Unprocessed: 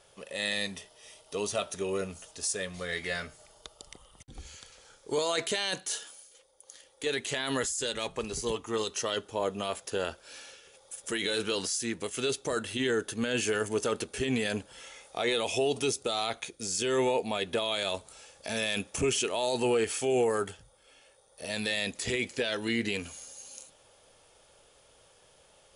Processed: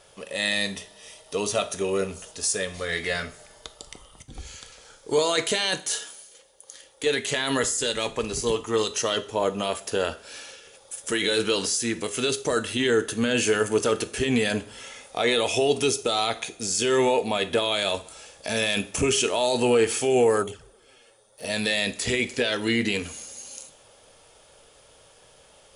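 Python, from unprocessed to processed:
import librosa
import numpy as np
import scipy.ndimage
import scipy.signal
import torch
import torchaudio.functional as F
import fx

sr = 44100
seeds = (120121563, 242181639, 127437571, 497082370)

y = fx.rev_double_slope(x, sr, seeds[0], early_s=0.42, late_s=2.1, knee_db=-22, drr_db=10.5)
y = fx.env_flanger(y, sr, rest_ms=10.5, full_db=-28.0, at=(20.42, 21.43), fade=0.02)
y = y * librosa.db_to_amplitude(6.0)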